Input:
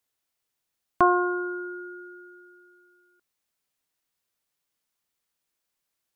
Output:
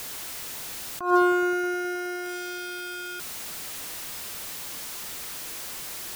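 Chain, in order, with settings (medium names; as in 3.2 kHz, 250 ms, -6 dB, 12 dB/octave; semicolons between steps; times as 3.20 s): jump at every zero crossing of -34.5 dBFS; on a send: feedback echo behind a low-pass 105 ms, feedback 84%, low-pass 570 Hz, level -21 dB; on the sum: attacks held to a fixed rise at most 130 dB/s; trim +4.5 dB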